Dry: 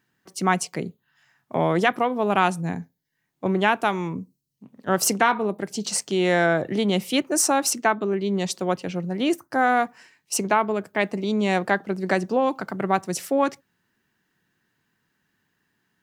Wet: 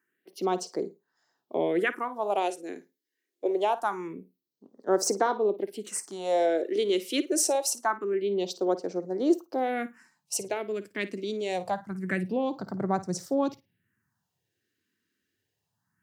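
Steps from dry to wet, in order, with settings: flutter echo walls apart 9.3 m, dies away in 0.21 s; phase shifter stages 4, 0.25 Hz, lowest notch 130–2800 Hz; high-pass sweep 380 Hz -> 100 Hz, 9.67–10.57 s; trim -5.5 dB

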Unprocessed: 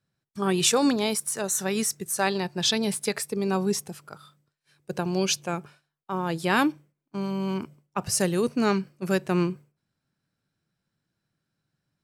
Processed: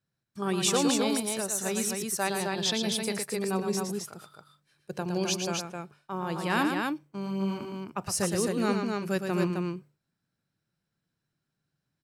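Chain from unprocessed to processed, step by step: loudspeakers at several distances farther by 39 m -6 dB, 90 m -4 dB; trim -5 dB

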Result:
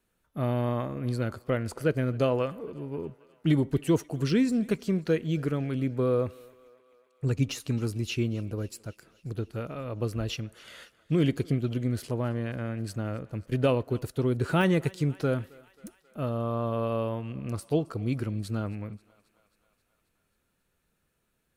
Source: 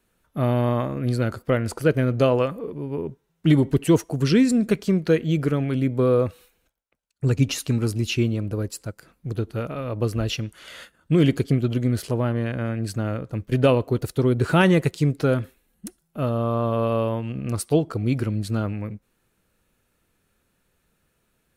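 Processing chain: de-esser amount 55%; on a send: thinning echo 268 ms, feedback 68%, high-pass 420 Hz, level -22.5 dB; on the sum: trim -6.5 dB

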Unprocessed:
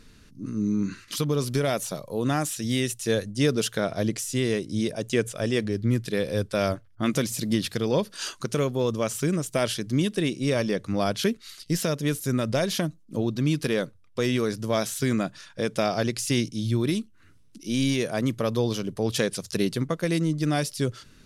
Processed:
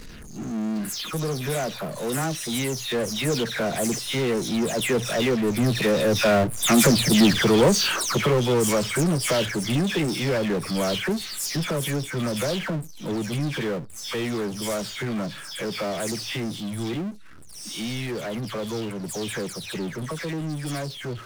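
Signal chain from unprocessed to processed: delay that grows with frequency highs early, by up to 234 ms; Doppler pass-by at 7.11 s, 15 m/s, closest 7.6 m; power-law waveshaper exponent 0.5; trim +4.5 dB

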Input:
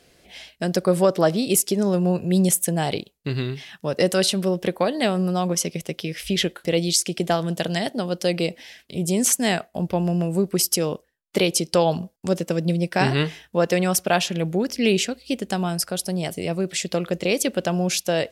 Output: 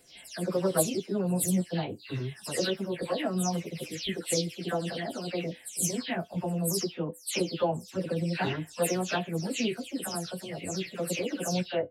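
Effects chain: delay that grows with frequency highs early, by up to 347 ms; plain phase-vocoder stretch 0.65×; feedback comb 100 Hz, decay 0.17 s, harmonics odd, mix 50%

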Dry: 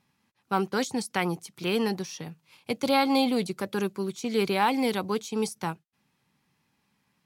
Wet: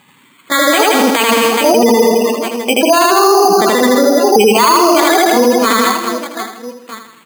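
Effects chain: sawtooth pitch modulation +10 st, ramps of 872 ms; high-pass 290 Hz 6 dB/octave; treble shelf 2 kHz +9 dB; reverse bouncing-ball echo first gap 80 ms, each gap 1.6×, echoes 5; spectral gate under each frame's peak -15 dB strong; on a send: feedback delay 80 ms, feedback 52%, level -8 dB; on the sum: careless resampling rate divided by 8×, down filtered, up hold; loudness maximiser +24 dB; trim -1 dB

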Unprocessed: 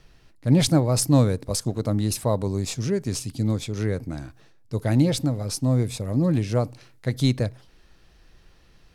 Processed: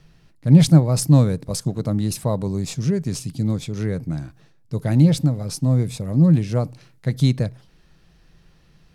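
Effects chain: peaking EQ 160 Hz +12 dB 0.54 oct; trim -1 dB

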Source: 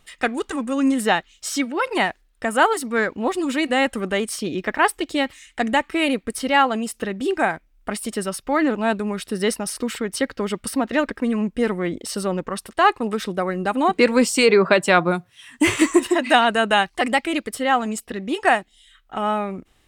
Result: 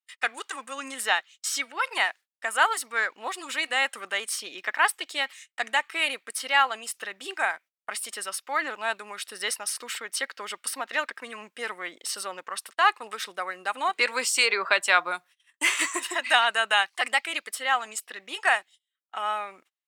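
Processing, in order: gate -40 dBFS, range -33 dB; high-pass 1.1 kHz 12 dB/octave; trim -1 dB

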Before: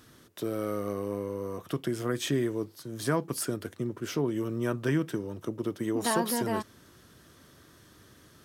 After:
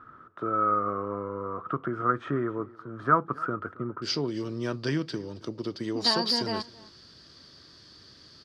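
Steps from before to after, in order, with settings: resonant low-pass 1.3 kHz, resonance Q 14, from 4.02 s 4.7 kHz; delay 270 ms -22.5 dB; trim -1.5 dB

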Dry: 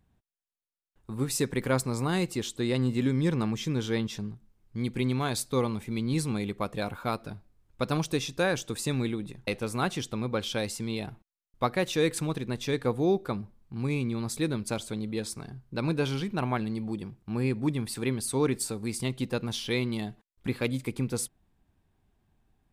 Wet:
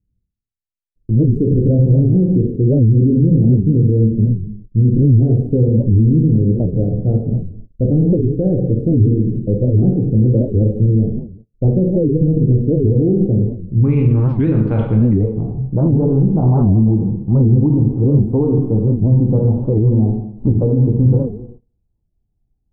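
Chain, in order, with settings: local Wiener filter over 15 samples; inverse Chebyshev low-pass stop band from 1 kHz, stop band 40 dB, from 13.83 s stop band from 5.7 kHz, from 15.14 s stop band from 1.7 kHz; plate-style reverb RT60 0.79 s, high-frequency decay 0.8×, DRR -0.5 dB; peak limiter -22 dBFS, peak gain reduction 9.5 dB; bass shelf 87 Hz -4.5 dB; gate -55 dBFS, range -24 dB; tilt EQ -4 dB/octave; warped record 78 rpm, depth 250 cents; trim +8 dB

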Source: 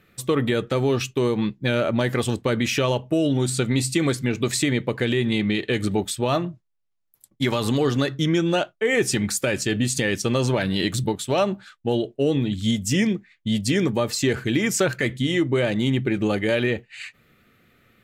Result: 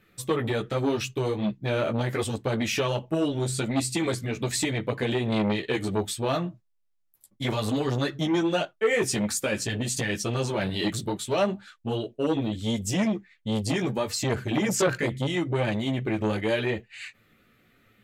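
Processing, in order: chorus voices 4, 0.76 Hz, delay 14 ms, depth 4.9 ms; transformer saturation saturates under 750 Hz

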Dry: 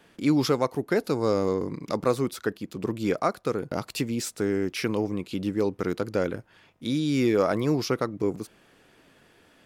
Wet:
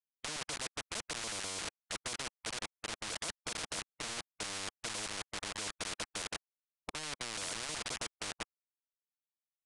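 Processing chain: median filter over 5 samples; bass shelf 74 Hz +11.5 dB; auto-wah 580–1500 Hz, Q 10, down, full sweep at -29.5 dBFS; delay 460 ms -21 dB; gain riding within 5 dB 0.5 s; rippled EQ curve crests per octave 1.8, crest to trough 15 dB; level held to a coarse grid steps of 12 dB; small samples zeroed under -47 dBFS; resampled via 22.05 kHz; spectrum-flattening compressor 10:1; trim +1.5 dB

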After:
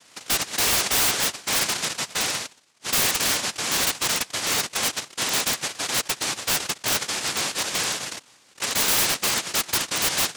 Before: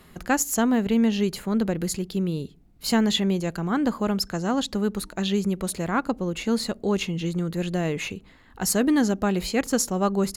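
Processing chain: noise-vocoded speech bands 1; integer overflow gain 14.5 dB

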